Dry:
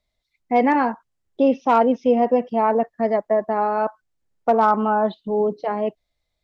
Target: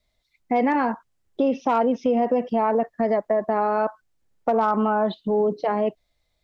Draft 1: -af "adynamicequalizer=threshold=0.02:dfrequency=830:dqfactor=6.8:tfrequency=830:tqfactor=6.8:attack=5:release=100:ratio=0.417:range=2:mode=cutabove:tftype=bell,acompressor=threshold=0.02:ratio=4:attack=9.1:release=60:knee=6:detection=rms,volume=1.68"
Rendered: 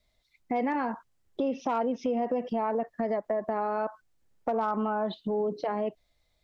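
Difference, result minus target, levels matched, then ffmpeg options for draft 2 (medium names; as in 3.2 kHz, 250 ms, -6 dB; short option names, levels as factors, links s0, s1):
compression: peak gain reduction +8 dB
-af "adynamicequalizer=threshold=0.02:dfrequency=830:dqfactor=6.8:tfrequency=830:tqfactor=6.8:attack=5:release=100:ratio=0.417:range=2:mode=cutabove:tftype=bell,acompressor=threshold=0.0668:ratio=4:attack=9.1:release=60:knee=6:detection=rms,volume=1.68"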